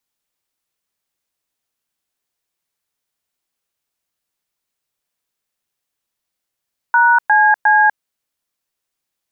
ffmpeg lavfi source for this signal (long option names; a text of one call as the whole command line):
ffmpeg -f lavfi -i "aevalsrc='0.282*clip(min(mod(t,0.356),0.246-mod(t,0.356))/0.002,0,1)*(eq(floor(t/0.356),0)*(sin(2*PI*941*mod(t,0.356))+sin(2*PI*1477*mod(t,0.356)))+eq(floor(t/0.356),1)*(sin(2*PI*852*mod(t,0.356))+sin(2*PI*1633*mod(t,0.356)))+eq(floor(t/0.356),2)*(sin(2*PI*852*mod(t,0.356))+sin(2*PI*1633*mod(t,0.356))))':duration=1.068:sample_rate=44100" out.wav